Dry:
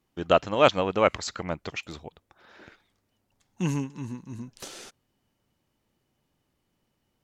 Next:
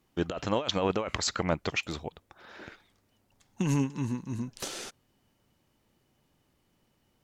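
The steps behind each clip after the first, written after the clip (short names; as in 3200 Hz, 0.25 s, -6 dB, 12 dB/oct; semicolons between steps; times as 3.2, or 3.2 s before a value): negative-ratio compressor -28 dBFS, ratio -1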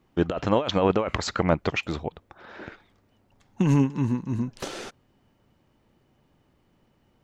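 bell 13000 Hz -13.5 dB 2.4 oct; gain +7 dB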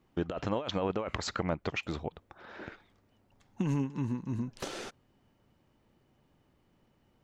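compressor 2:1, threshold -28 dBFS, peak gain reduction 7.5 dB; gain -4 dB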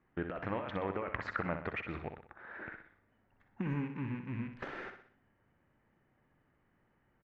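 rattling part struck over -37 dBFS, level -37 dBFS; synth low-pass 1800 Hz, resonance Q 3; feedback echo 62 ms, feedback 45%, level -8 dB; gain -6 dB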